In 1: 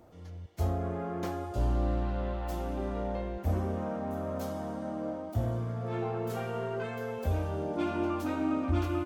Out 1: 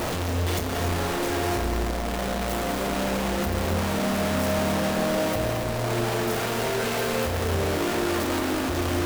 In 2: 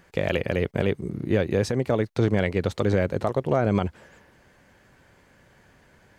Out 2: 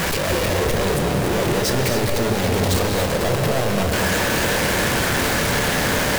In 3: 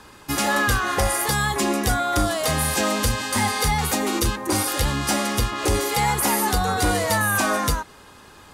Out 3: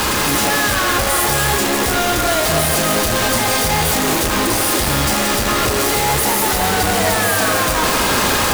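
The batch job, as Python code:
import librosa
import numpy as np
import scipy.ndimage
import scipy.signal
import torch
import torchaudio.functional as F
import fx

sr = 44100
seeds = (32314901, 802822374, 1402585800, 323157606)

p1 = np.sign(x) * np.sqrt(np.mean(np.square(x)))
p2 = fx.hum_notches(p1, sr, base_hz=50, count=2)
p3 = fx.doubler(p2, sr, ms=31.0, db=-11.0)
p4 = p3 + fx.echo_banded(p3, sr, ms=174, feedback_pct=85, hz=500.0, wet_db=-8.0, dry=0)
p5 = fx.rev_gated(p4, sr, seeds[0], gate_ms=310, shape='rising', drr_db=4.5)
y = p5 * 10.0 ** (4.5 / 20.0)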